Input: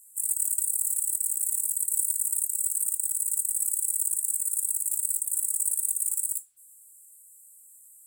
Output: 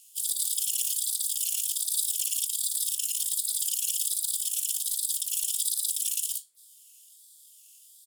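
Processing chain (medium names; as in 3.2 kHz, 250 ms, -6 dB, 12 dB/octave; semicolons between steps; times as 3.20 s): harmony voices -12 st -8 dB, +3 st -5 dB; ring modulator with a swept carrier 830 Hz, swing 40%, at 1.3 Hz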